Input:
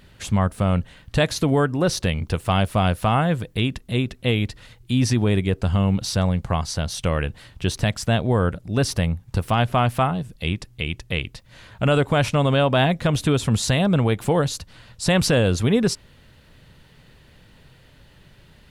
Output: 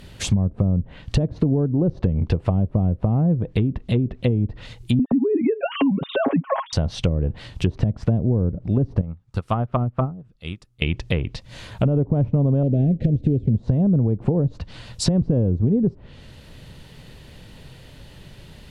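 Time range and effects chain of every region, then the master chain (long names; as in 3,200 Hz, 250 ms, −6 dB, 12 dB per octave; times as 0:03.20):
0:04.99–0:06.73: three sine waves on the formant tracks + downward compressor 2.5 to 1, threshold −22 dBFS + comb filter 7.3 ms, depth 66%
0:09.01–0:10.82: parametric band 1,300 Hz +11 dB 0.38 octaves + expander for the loud parts 2.5 to 1, over −26 dBFS
0:12.63–0:13.56: log-companded quantiser 4 bits + Butterworth band-reject 1,100 Hz, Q 0.71
whole clip: treble cut that deepens with the level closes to 350 Hz, closed at −17 dBFS; downward compressor 4 to 1, threshold −24 dBFS; parametric band 1,500 Hz −5.5 dB 1.2 octaves; level +8 dB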